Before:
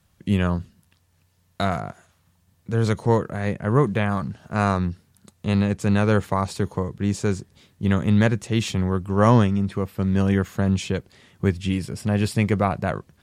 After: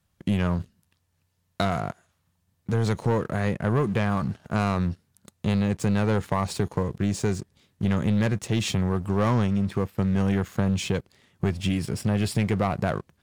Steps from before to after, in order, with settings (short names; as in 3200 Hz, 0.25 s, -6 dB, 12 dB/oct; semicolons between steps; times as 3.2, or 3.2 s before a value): sample leveller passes 2; compressor 3:1, threshold -17 dBFS, peak gain reduction 6.5 dB; gain -4.5 dB